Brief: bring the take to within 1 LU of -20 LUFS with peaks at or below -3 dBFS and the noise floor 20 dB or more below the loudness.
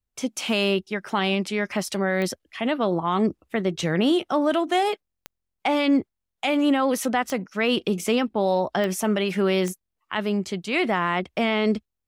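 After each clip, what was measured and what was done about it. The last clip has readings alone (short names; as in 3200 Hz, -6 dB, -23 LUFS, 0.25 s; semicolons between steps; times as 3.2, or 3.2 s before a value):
clicks 5; loudness -24.0 LUFS; peak -11.5 dBFS; loudness target -20.0 LUFS
-> de-click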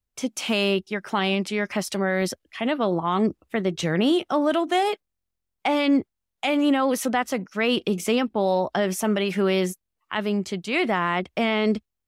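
clicks 0; loudness -24.0 LUFS; peak -11.5 dBFS; loudness target -20.0 LUFS
-> gain +4 dB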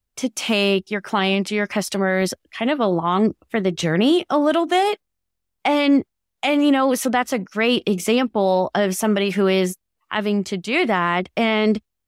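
loudness -20.0 LUFS; peak -7.5 dBFS; noise floor -78 dBFS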